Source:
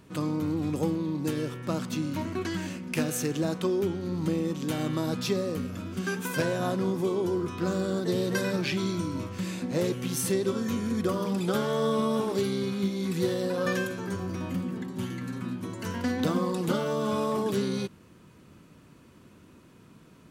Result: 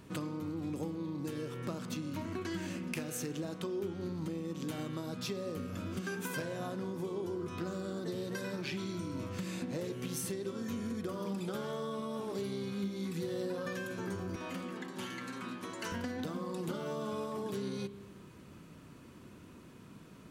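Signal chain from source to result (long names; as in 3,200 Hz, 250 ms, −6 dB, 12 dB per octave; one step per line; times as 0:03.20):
0:14.36–0:15.92: meter weighting curve A
downward compressor 10 to 1, threshold −35 dBFS, peak gain reduction 14 dB
on a send: convolution reverb RT60 1.3 s, pre-delay 30 ms, DRR 11.5 dB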